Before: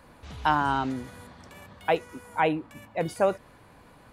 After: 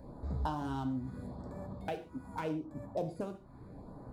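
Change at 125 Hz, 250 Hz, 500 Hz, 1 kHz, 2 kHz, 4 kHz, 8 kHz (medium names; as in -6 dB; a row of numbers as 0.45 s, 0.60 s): -2.0 dB, -5.5 dB, -12.0 dB, -14.5 dB, -19.0 dB, -15.0 dB, -14.0 dB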